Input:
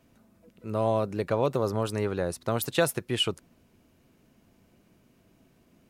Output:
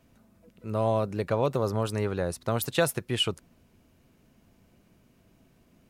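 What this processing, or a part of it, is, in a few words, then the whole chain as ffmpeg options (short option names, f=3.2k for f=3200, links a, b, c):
low shelf boost with a cut just above: -af "lowshelf=f=90:g=5,equalizer=f=330:t=o:w=0.77:g=-2"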